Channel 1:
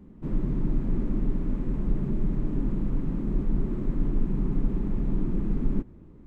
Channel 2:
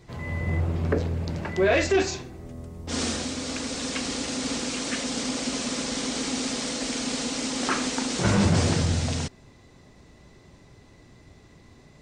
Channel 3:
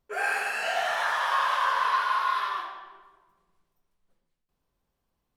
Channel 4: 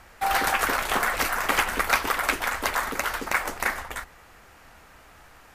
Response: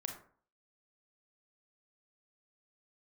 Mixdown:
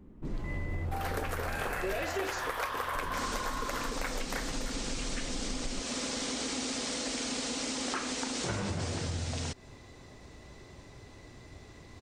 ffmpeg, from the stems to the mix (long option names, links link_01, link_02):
-filter_complex "[0:a]volume=-1.5dB,asplit=3[link_01][link_02][link_03];[link_01]atrim=end=2.06,asetpts=PTS-STARTPTS,afade=type=out:start_time=2.056:duration=0.004:curve=hsin[link_04];[link_02]atrim=start=2.06:end=2.95,asetpts=PTS-STARTPTS,volume=0[link_05];[link_03]atrim=start=2.95,asetpts=PTS-STARTPTS,afade=type=in:duration=0.004:curve=hsin[link_06];[link_04][link_05][link_06]concat=n=3:v=0:a=1[link_07];[1:a]adelay=250,volume=2.5dB[link_08];[2:a]adelay=1300,volume=0.5dB[link_09];[3:a]equalizer=frequency=490:width_type=o:width=0.77:gain=11.5,adelay=700,volume=-1.5dB[link_10];[link_07][link_08][link_09][link_10]amix=inputs=4:normalize=0,equalizer=frequency=180:width=1.4:gain=-5.5,acompressor=threshold=-32dB:ratio=6"